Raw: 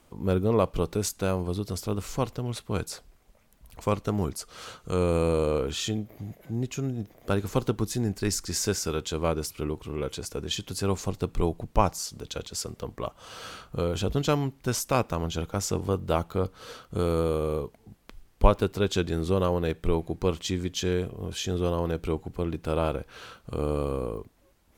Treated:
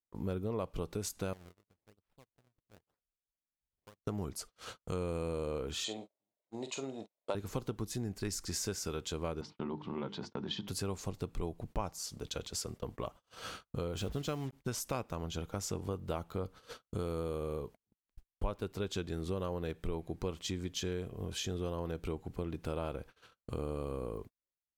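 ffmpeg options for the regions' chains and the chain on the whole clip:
-filter_complex "[0:a]asettb=1/sr,asplit=3[a][b][c];[a]atrim=end=1.334[d];[b]atrim=start=1.33:end=4.04,asetpts=PTS-STARTPTS,afade=t=in:d=0.004:c=qsin,afade=t=out:st=2.706:d=0.004:c=qsin,acompressor=threshold=-43dB:ratio=6:attack=3.2:release=140:knee=1:detection=peak,acrusher=samples=31:mix=1:aa=0.000001:lfo=1:lforange=49.6:lforate=1[e];[c]atrim=start=4.036[f];[d][e]acrossfade=d=0.004:c1=hsin:c2=qsin[g];[g][f]acrossfade=d=0.004:c1=qsin:c2=hsin,asettb=1/sr,asplit=3[h][i][j];[h]atrim=end=5.844[k];[i]atrim=start=5.84:end=7.35,asetpts=PTS-STARTPTS,afade=t=in:d=0.004:c=qsin,afade=t=out:st=1.506:d=0.004:c=qsin,highpass=400,equalizer=f=590:t=q:w=4:g=8,equalizer=f=930:t=q:w=4:g=8,equalizer=f=1.6k:t=q:w=4:g=-7,equalizer=f=4k:t=q:w=4:g=9,equalizer=f=5.6k:t=q:w=4:g=-6,equalizer=f=8.1k:t=q:w=4:g=4,lowpass=f=8.7k:w=0.5412,lowpass=f=8.7k:w=1.3066,asplit=2[l][m];[m]adelay=45,volume=-10dB[n];[l][n]amix=inputs=2:normalize=0,atrim=end_sample=66591[o];[j]atrim=start=7.346[p];[k][o]acrossfade=d=0.004:c1=hsin:c2=qsin[q];[q][p]acrossfade=d=0.004:c1=qsin:c2=hsin,asettb=1/sr,asplit=3[r][s][t];[r]atrim=end=9.414[u];[s]atrim=start=9.41:end=10.68,asetpts=PTS-STARTPTS,afade=t=in:d=0.004:c=qsin,afade=t=out:st=1.266:d=0.004:c=qsin,highpass=f=120:w=0.5412,highpass=f=120:w=1.3066,equalizer=f=210:t=q:w=4:g=9,equalizer=f=470:t=q:w=4:g=-6,equalizer=f=900:t=q:w=4:g=10,equalizer=f=2.5k:t=q:w=4:g=-6,lowpass=f=4.3k:w=0.5412,lowpass=f=4.3k:w=1.3066,bandreject=f=50:t=h:w=6,bandreject=f=100:t=h:w=6,bandreject=f=150:t=h:w=6,bandreject=f=200:t=h:w=6,bandreject=f=250:t=h:w=6,bandreject=f=300:t=h:w=6,bandreject=f=350:t=h:w=6,bandreject=f=400:t=h:w=6,bandreject=f=450:t=h:w=6[v];[t]atrim=start=10.676[w];[u][v]acrossfade=d=0.004:c1=hsin:c2=qsin[x];[x][w]acrossfade=d=0.004:c1=qsin:c2=hsin,asettb=1/sr,asplit=3[y][z][aa];[y]atrim=end=13.974[ab];[z]atrim=start=13.97:end=14.53,asetpts=PTS-STARTPTS,afade=t=in:d=0.004:c=qsin,afade=t=out:st=0.556:d=0.004:c=qsin,bandreject=f=910:w=12,acrusher=bits=6:mix=0:aa=0.5[ac];[aa]atrim=start=14.526[ad];[ab][ac]acrossfade=d=0.004:c1=hsin:c2=qsin[ae];[ae][ad]acrossfade=d=0.004:c1=qsin:c2=hsin,agate=range=-42dB:threshold=-41dB:ratio=16:detection=peak,acompressor=threshold=-34dB:ratio=3,volume=-2dB"

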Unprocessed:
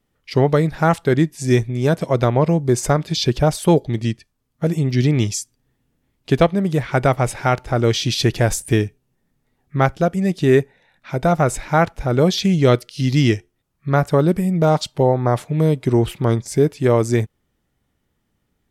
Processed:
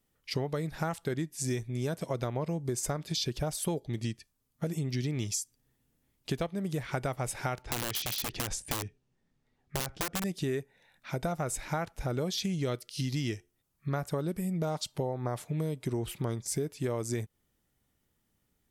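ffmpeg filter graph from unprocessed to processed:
-filter_complex "[0:a]asettb=1/sr,asplit=3[a][b][c];[a]atrim=end=7.624[d];[b]atrim=start=7.62:end=10.24,asetpts=PTS-STARTPTS,afade=t=in:d=0.004:c=qsin,afade=t=out:st=2.616:d=0.004:c=qsin,lowpass=4.9k,acompressor=threshold=-18dB:ratio=8:attack=3.2:release=140:knee=1:detection=peak,aeval=exprs='(mod(7.08*val(0)+1,2)-1)/7.08':c=same[e];[c]atrim=start=10.236[f];[d][e]acrossfade=d=0.004:c1=hsin:c2=qsin[g];[g][f]acrossfade=d=0.004:c1=qsin:c2=hsin,highshelf=f=5.5k:g=11,acompressor=threshold=-22dB:ratio=6,volume=-7.5dB"

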